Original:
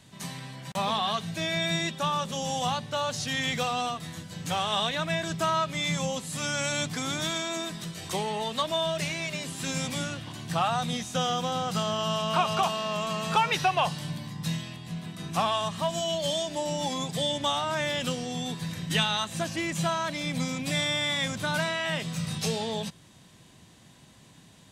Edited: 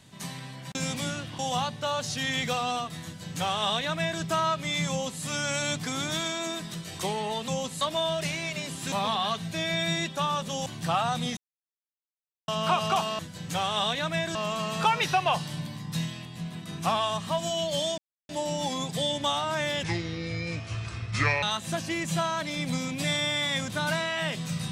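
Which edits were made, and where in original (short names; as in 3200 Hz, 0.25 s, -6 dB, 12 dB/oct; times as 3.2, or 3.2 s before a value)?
0.75–2.49 swap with 9.69–10.33
4.15–5.31 copy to 12.86
6–6.33 copy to 8.58
11.04–12.15 mute
16.49 insert silence 0.31 s
18.03–19.1 speed 67%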